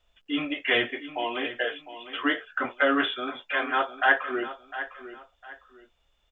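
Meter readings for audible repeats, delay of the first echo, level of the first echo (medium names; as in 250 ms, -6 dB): 2, 705 ms, -13.0 dB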